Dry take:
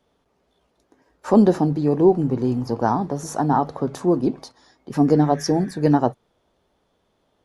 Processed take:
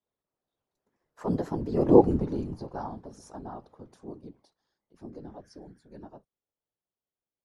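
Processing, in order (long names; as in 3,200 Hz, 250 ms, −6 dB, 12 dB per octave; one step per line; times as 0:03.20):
source passing by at 0:02.00, 19 m/s, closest 2.9 metres
random phases in short frames
level −1.5 dB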